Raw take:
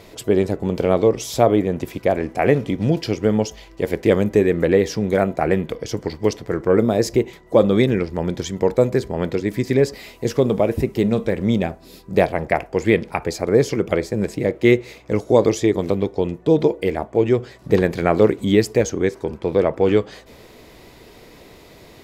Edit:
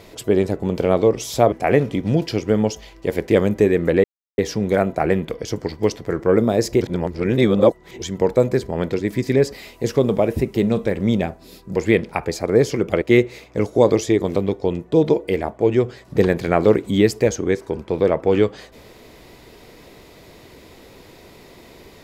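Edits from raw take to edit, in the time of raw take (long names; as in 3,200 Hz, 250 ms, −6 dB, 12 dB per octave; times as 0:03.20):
0:01.52–0:02.27: remove
0:04.79: splice in silence 0.34 s
0:07.22–0:08.43: reverse
0:12.17–0:12.75: remove
0:14.01–0:14.56: remove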